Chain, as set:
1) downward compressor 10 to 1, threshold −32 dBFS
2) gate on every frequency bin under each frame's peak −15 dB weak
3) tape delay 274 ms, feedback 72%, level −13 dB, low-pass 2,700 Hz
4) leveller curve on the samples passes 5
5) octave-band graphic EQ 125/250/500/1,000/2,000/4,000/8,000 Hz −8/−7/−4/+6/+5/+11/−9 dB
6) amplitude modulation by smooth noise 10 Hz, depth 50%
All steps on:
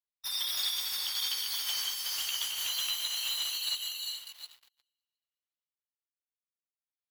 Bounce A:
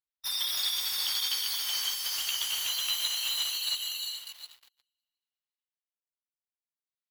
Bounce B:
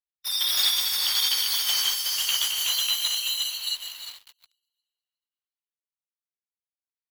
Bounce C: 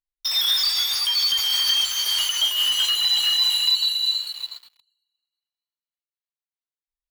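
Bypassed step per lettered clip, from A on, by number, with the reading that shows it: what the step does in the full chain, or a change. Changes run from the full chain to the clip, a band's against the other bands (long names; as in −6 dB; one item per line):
6, change in integrated loudness +2.5 LU
1, average gain reduction 5.5 dB
2, 4 kHz band +5.0 dB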